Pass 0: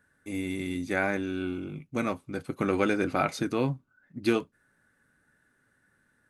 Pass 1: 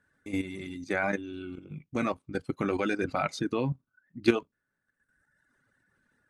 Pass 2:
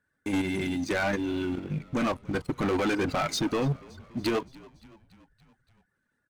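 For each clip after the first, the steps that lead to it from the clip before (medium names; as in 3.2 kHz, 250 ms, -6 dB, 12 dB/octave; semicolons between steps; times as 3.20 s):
low-pass 7.6 kHz 12 dB/octave; reverb removal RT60 1.3 s; level held to a coarse grid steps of 11 dB; trim +5 dB
peak limiter -21.5 dBFS, peak gain reduction 11.5 dB; waveshaping leveller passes 3; frequency-shifting echo 285 ms, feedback 64%, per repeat -49 Hz, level -22.5 dB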